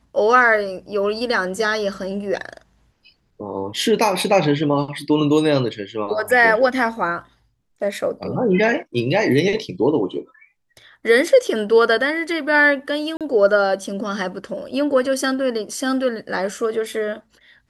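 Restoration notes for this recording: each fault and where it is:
13.17–13.21 s: dropout 37 ms

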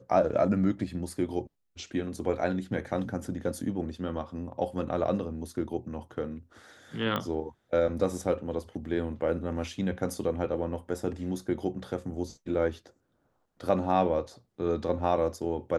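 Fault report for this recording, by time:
7.16 s: pop -17 dBFS

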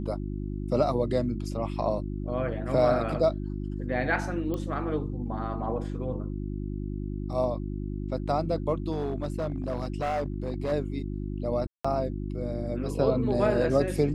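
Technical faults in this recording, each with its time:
hum 50 Hz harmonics 7 -33 dBFS
4.54 s: pop -21 dBFS
8.91–10.73 s: clipped -25 dBFS
11.67–11.85 s: dropout 175 ms

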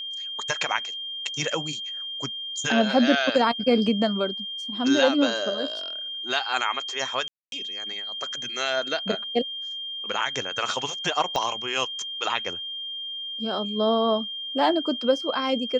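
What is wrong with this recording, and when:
whine 3.2 kHz -31 dBFS
7.28–7.52 s: dropout 242 ms
11.36 s: pop -13 dBFS

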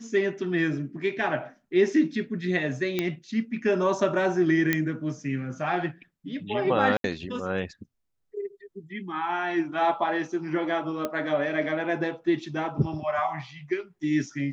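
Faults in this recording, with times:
2.99 s: pop -12 dBFS
4.73 s: pop -9 dBFS
6.97–7.04 s: dropout 72 ms
11.05 s: pop -15 dBFS

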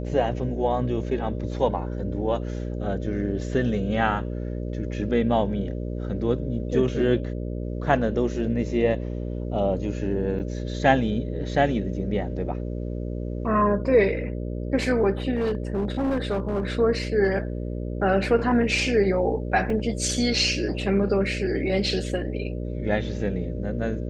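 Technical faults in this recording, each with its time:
buzz 60 Hz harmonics 10 -30 dBFS
10.39–10.40 s: dropout 8.1 ms
15.35–16.67 s: clipped -20.5 dBFS
19.70 s: dropout 2.1 ms

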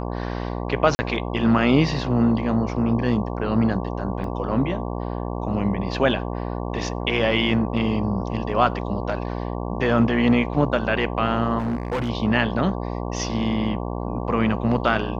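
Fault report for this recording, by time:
buzz 60 Hz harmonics 19 -28 dBFS
0.95–0.99 s: dropout 40 ms
4.24 s: dropout 2.2 ms
11.58–12.10 s: clipped -21 dBFS

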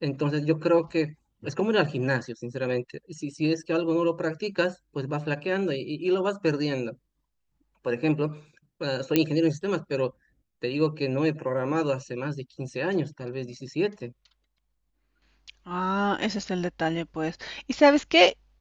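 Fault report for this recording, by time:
9.16 s: pop -7 dBFS

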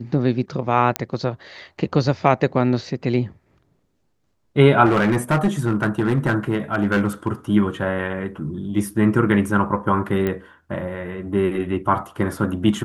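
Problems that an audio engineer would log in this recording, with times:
0.96 s: pop -4 dBFS
4.85–7.28 s: clipped -13 dBFS
10.27 s: pop -12 dBFS

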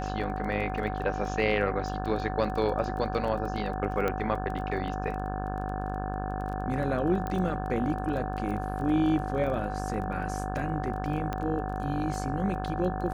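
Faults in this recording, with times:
buzz 50 Hz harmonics 35 -34 dBFS
crackle 17 per s -36 dBFS
whine 750 Hz -36 dBFS
4.08 s: pop -16 dBFS
7.27 s: pop -21 dBFS
11.33 s: pop -18 dBFS

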